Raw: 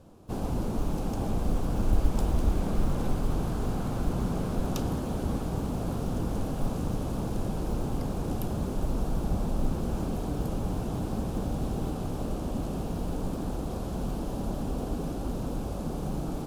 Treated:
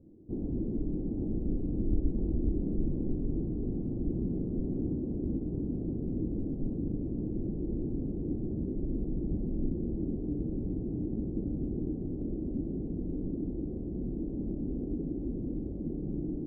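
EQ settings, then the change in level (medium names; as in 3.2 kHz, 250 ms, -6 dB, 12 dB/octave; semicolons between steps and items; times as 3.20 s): four-pole ladder low-pass 380 Hz, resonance 55%; +4.5 dB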